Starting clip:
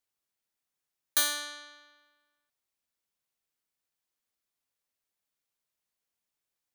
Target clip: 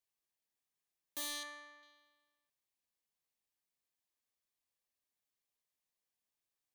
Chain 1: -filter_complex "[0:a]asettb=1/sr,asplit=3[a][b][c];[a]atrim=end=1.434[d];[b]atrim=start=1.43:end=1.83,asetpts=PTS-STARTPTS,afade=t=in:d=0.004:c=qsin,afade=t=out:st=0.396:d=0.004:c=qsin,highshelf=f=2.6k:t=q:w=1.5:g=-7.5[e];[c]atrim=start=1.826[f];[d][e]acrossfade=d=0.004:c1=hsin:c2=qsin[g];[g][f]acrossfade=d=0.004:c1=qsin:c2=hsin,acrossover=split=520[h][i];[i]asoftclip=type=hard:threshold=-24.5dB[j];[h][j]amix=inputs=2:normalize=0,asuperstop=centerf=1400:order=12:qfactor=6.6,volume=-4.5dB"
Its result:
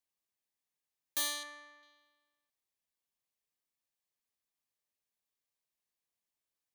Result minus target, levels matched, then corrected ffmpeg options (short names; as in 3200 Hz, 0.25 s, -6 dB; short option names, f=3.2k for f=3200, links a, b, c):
hard clip: distortion -7 dB
-filter_complex "[0:a]asettb=1/sr,asplit=3[a][b][c];[a]atrim=end=1.434[d];[b]atrim=start=1.43:end=1.83,asetpts=PTS-STARTPTS,afade=t=in:d=0.004:c=qsin,afade=t=out:st=0.396:d=0.004:c=qsin,highshelf=f=2.6k:t=q:w=1.5:g=-7.5[e];[c]atrim=start=1.826[f];[d][e]acrossfade=d=0.004:c1=hsin:c2=qsin[g];[g][f]acrossfade=d=0.004:c1=qsin:c2=hsin,acrossover=split=520[h][i];[i]asoftclip=type=hard:threshold=-35dB[j];[h][j]amix=inputs=2:normalize=0,asuperstop=centerf=1400:order=12:qfactor=6.6,volume=-4.5dB"